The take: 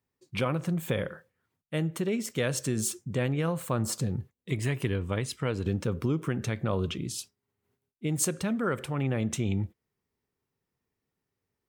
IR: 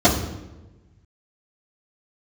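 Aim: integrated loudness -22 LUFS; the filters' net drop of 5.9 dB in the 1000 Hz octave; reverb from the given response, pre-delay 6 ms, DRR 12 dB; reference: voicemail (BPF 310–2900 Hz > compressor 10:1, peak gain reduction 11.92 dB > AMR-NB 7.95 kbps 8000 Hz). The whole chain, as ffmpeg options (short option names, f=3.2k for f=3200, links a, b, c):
-filter_complex "[0:a]equalizer=f=1k:t=o:g=-8,asplit=2[a][b];[1:a]atrim=start_sample=2205,adelay=6[c];[b][c]afir=irnorm=-1:irlink=0,volume=-34.5dB[d];[a][d]amix=inputs=2:normalize=0,highpass=310,lowpass=2.9k,acompressor=threshold=-38dB:ratio=10,volume=22.5dB" -ar 8000 -c:a libopencore_amrnb -b:a 7950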